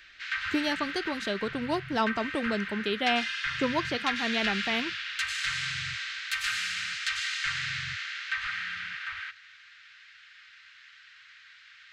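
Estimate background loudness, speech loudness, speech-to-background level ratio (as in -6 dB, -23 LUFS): -32.0 LUFS, -31.0 LUFS, 1.0 dB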